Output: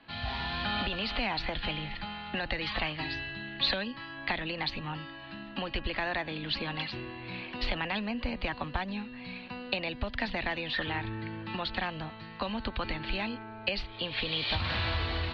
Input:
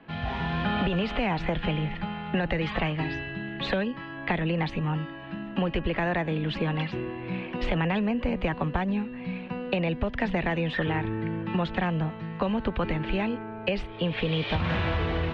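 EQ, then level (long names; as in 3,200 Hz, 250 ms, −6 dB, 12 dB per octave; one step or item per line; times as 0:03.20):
low-pass with resonance 4,400 Hz, resonance Q 7.1
parametric band 170 Hz −13.5 dB 0.38 octaves
parametric band 430 Hz −8 dB 0.81 octaves
−3.5 dB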